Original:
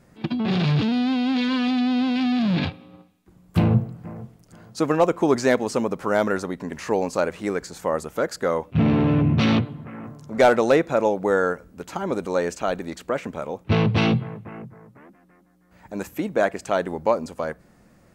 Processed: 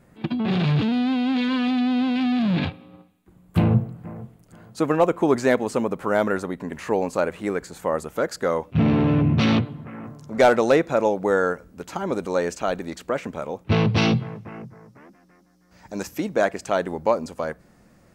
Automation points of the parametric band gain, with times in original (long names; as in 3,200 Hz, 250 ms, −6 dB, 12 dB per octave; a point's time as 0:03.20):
parametric band 5,400 Hz 0.7 octaves
0:07.74 −7 dB
0:08.44 +1 dB
0:13.69 +1 dB
0:14.21 +12.5 dB
0:15.98 +12.5 dB
0:16.68 +1.5 dB